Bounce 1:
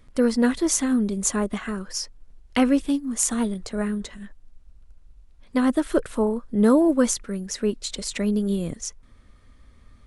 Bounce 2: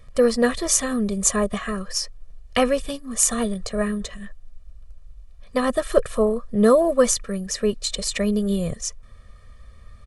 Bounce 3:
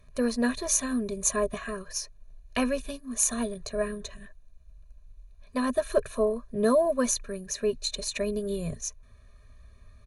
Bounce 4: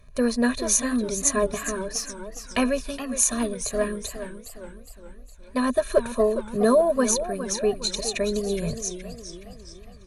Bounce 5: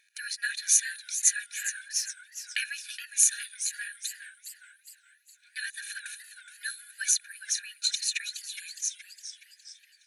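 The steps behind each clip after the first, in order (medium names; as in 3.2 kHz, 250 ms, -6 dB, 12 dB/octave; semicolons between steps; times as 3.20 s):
comb 1.7 ms, depth 85%; trim +2 dB
rippled EQ curve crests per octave 1.5, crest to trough 11 dB; trim -8 dB
modulated delay 416 ms, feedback 50%, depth 161 cents, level -11 dB; trim +4 dB
brick-wall FIR high-pass 1.4 kHz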